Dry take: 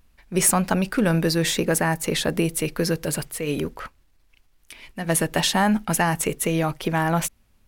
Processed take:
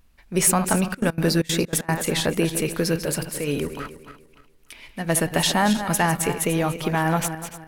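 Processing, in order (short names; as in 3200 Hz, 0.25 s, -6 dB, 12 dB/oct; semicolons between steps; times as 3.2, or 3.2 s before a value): regenerating reverse delay 0.147 s, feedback 52%, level -9.5 dB; 0.78–1.94 step gate ".xx.x.xxx" 191 bpm -24 dB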